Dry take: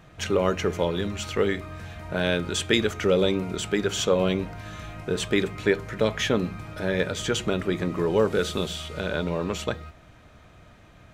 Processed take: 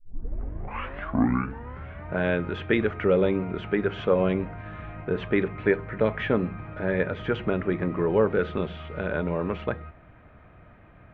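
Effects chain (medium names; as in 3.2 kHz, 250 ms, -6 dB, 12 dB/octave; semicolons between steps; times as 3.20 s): tape start-up on the opening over 2.12 s; low-pass 2.3 kHz 24 dB/octave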